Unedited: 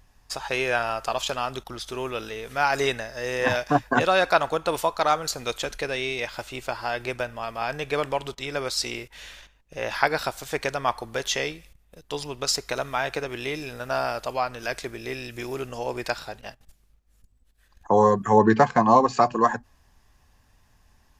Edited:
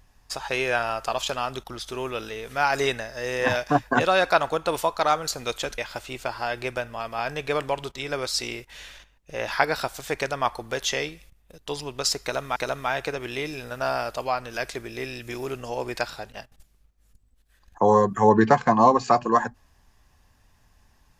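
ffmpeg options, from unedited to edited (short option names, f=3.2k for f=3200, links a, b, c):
-filter_complex "[0:a]asplit=3[a][b][c];[a]atrim=end=5.782[d];[b]atrim=start=6.208:end=12.992[e];[c]atrim=start=12.648[f];[d][e]acrossfade=d=0.004:c1=hsin:c2=hsin[g];[g][f]acrossfade=d=0.004:c1=hsin:c2=hsin"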